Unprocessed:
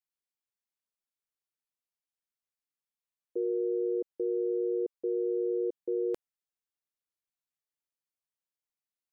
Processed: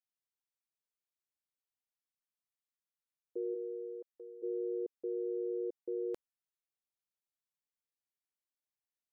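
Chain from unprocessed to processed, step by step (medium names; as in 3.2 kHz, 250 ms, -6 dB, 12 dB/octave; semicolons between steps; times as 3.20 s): 3.54–4.42 s: high-pass 400 Hz -> 1 kHz 12 dB/octave; trim -6.5 dB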